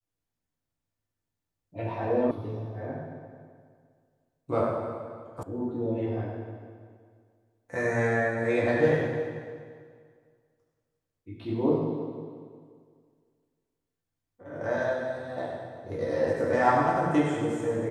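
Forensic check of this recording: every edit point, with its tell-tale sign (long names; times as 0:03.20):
0:02.31: cut off before it has died away
0:05.43: cut off before it has died away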